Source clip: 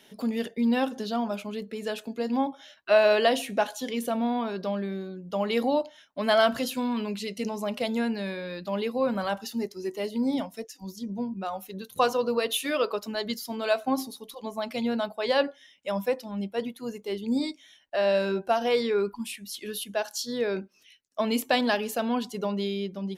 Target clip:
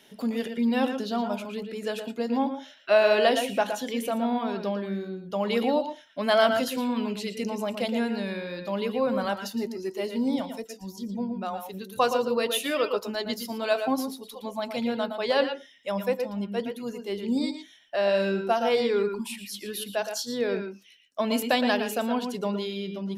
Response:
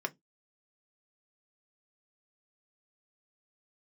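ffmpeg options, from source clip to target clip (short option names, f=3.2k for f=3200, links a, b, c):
-filter_complex "[0:a]asplit=2[a][b];[1:a]atrim=start_sample=2205,asetrate=61740,aresample=44100,adelay=115[c];[b][c]afir=irnorm=-1:irlink=0,volume=-8dB[d];[a][d]amix=inputs=2:normalize=0"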